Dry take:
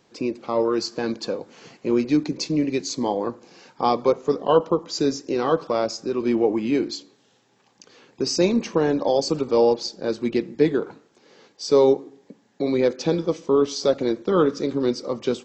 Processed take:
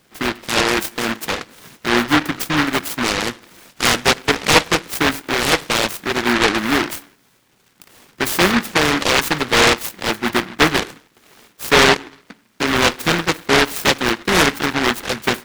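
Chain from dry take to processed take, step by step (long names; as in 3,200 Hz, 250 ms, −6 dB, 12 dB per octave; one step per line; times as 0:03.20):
short delay modulated by noise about 1,400 Hz, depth 0.44 ms
level +4 dB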